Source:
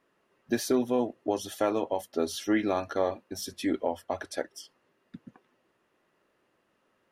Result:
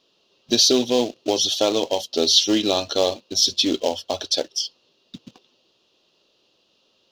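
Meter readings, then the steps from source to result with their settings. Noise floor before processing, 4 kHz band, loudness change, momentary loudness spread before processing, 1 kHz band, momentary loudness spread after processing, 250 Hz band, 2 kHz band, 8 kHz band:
-73 dBFS, +23.5 dB, +10.5 dB, 10 LU, +4.0 dB, 9 LU, +5.5 dB, +3.0 dB, +17.0 dB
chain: graphic EQ 500/2000/4000/8000 Hz +4/-12/+9/-7 dB; in parallel at -10 dB: companded quantiser 4-bit; on the sum: band shelf 4200 Hz +16 dB; gain +2 dB

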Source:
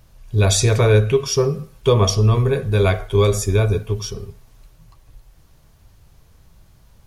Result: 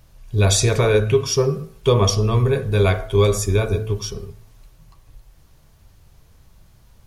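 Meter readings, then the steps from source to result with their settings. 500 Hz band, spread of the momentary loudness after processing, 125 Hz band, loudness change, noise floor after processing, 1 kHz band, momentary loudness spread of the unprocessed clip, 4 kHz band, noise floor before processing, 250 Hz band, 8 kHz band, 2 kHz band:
-0.5 dB, 9 LU, -2.0 dB, -1.0 dB, -52 dBFS, -0.5 dB, 10 LU, 0.0 dB, -52 dBFS, -0.5 dB, 0.0 dB, -0.5 dB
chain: de-hum 54.63 Hz, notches 31

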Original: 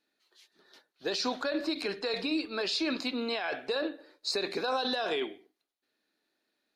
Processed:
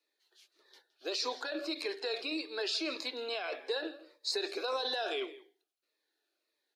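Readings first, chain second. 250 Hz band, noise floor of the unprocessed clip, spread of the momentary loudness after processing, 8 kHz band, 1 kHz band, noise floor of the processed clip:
-8.5 dB, -82 dBFS, 6 LU, -1.5 dB, -5.0 dB, -84 dBFS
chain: steep high-pass 340 Hz 36 dB/oct; echo 0.166 s -18.5 dB; cascading phaser falling 1.7 Hz; gain -1.5 dB

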